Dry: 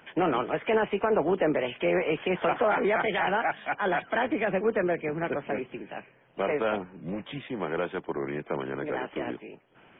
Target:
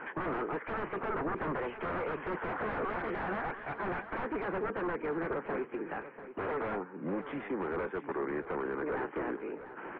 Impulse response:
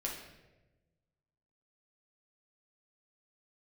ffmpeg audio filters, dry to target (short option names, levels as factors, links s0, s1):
-filter_complex "[0:a]highpass=350,asplit=2[s0][s1];[s1]aeval=exprs='clip(val(0),-1,0.015)':c=same,volume=0.501[s2];[s0][s2]amix=inputs=2:normalize=0,agate=range=0.0224:threshold=0.00282:ratio=3:detection=peak,equalizer=f=640:w=3.2:g=-10,acompressor=mode=upward:threshold=0.0355:ratio=2.5,aeval=exprs='0.0398*(abs(mod(val(0)/0.0398+3,4)-2)-1)':c=same,lowpass=f=1700:w=0.5412,lowpass=f=1700:w=1.3066,asplit=2[s3][s4];[s4]aecho=0:1:691:0.237[s5];[s3][s5]amix=inputs=2:normalize=0"